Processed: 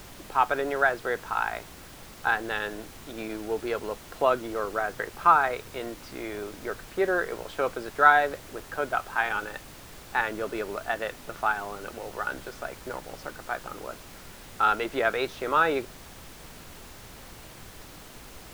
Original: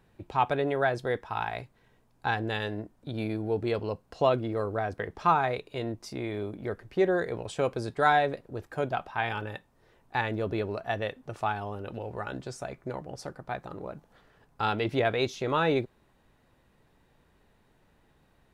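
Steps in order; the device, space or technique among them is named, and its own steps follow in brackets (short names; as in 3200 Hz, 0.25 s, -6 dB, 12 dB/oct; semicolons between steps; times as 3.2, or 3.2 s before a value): horn gramophone (BPF 300–4000 Hz; bell 1400 Hz +10 dB 0.58 oct; wow and flutter 23 cents; pink noise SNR 16 dB)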